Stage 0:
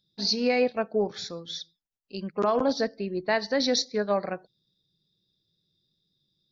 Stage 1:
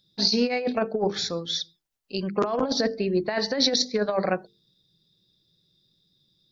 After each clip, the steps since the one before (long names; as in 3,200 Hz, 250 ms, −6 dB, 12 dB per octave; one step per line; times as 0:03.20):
mains-hum notches 50/100/150/200/250/300/350/400/450 Hz
compressor whose output falls as the input rises −27 dBFS, ratio −0.5
level +5 dB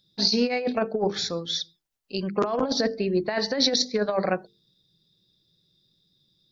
no processing that can be heard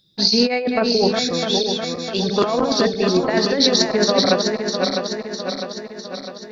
feedback delay that plays each chunk backwards 327 ms, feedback 74%, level −4.5 dB
level +5.5 dB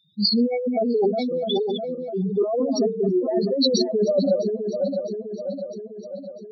expanding power law on the bin magnitudes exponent 4
level −2.5 dB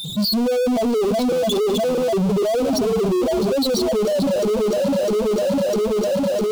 power curve on the samples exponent 0.35
parametric band 1,800 Hz −12.5 dB 0.81 octaves
brickwall limiter −16 dBFS, peak gain reduction 8.5 dB